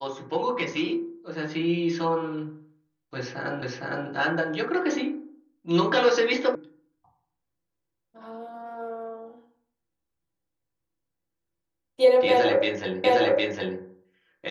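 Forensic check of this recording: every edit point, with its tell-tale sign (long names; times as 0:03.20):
0:03.62: the same again, the last 0.46 s
0:06.55: cut off before it has died away
0:13.04: the same again, the last 0.76 s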